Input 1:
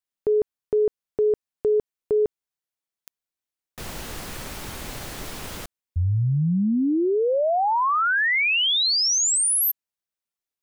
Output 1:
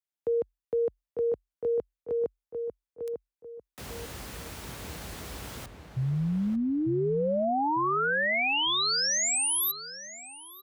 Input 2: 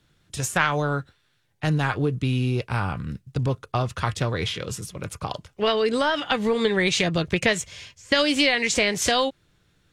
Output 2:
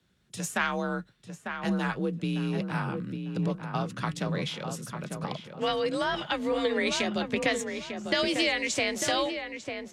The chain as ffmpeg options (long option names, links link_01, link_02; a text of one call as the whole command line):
ffmpeg -i in.wav -filter_complex "[0:a]afreqshift=43,asplit=2[link_01][link_02];[link_02]adelay=898,lowpass=frequency=1900:poles=1,volume=-6dB,asplit=2[link_03][link_04];[link_04]adelay=898,lowpass=frequency=1900:poles=1,volume=0.32,asplit=2[link_05][link_06];[link_06]adelay=898,lowpass=frequency=1900:poles=1,volume=0.32,asplit=2[link_07][link_08];[link_08]adelay=898,lowpass=frequency=1900:poles=1,volume=0.32[link_09];[link_01][link_03][link_05][link_07][link_09]amix=inputs=5:normalize=0,volume=-6.5dB" out.wav